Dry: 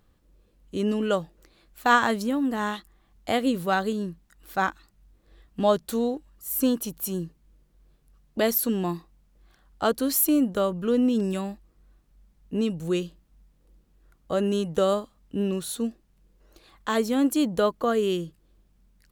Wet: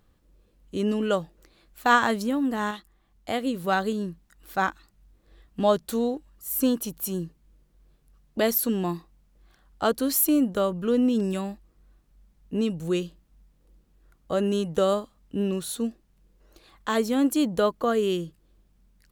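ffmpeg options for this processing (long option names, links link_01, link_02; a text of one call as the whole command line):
ffmpeg -i in.wav -filter_complex "[0:a]asplit=3[link_01][link_02][link_03];[link_01]atrim=end=2.712[link_04];[link_02]atrim=start=2.708:end=3.642,asetpts=PTS-STARTPTS,volume=-3.5dB[link_05];[link_03]atrim=start=3.638[link_06];[link_04][link_05]acrossfade=duration=0.004:curve1=hsin:curve2=hsin[link_07];[link_07][link_06]acrossfade=duration=0.004:curve1=hsin:curve2=hsin" out.wav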